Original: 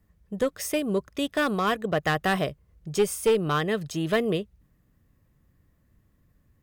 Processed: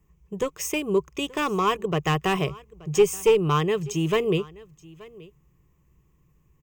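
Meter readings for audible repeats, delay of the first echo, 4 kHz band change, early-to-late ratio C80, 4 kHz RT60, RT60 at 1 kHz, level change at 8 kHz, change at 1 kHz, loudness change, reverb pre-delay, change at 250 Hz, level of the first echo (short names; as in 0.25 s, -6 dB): 1, 0.878 s, +1.5 dB, none, none, none, +2.5 dB, +2.5 dB, +2.0 dB, none, +0.5 dB, -22.0 dB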